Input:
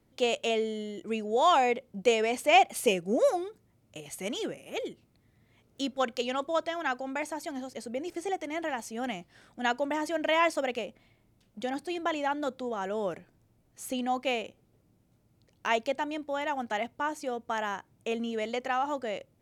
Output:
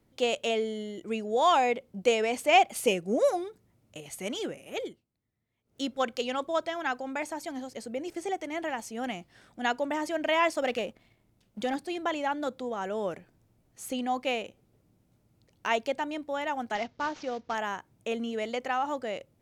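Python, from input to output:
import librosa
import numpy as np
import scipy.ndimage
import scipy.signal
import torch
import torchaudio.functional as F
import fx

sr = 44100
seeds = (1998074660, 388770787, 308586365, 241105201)

y = fx.leveller(x, sr, passes=1, at=(10.62, 11.76))
y = fx.cvsd(y, sr, bps=32000, at=(16.75, 17.55))
y = fx.edit(y, sr, fx.fade_down_up(start_s=4.84, length_s=0.99, db=-18.0, fade_s=0.19), tone=tone)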